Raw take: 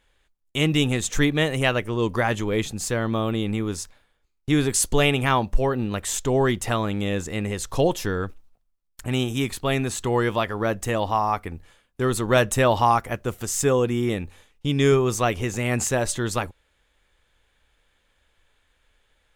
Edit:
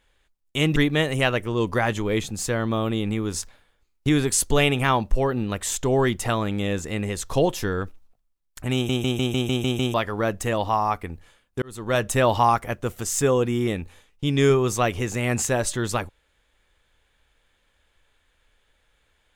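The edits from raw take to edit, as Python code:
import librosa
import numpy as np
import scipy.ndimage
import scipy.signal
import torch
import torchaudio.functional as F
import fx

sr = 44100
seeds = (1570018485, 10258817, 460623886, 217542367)

y = fx.edit(x, sr, fx.cut(start_s=0.76, length_s=0.42),
    fx.clip_gain(start_s=3.76, length_s=0.75, db=3.5),
    fx.stutter_over(start_s=9.16, slice_s=0.15, count=8),
    fx.fade_in_span(start_s=12.04, length_s=0.77, curve='qsin'), tone=tone)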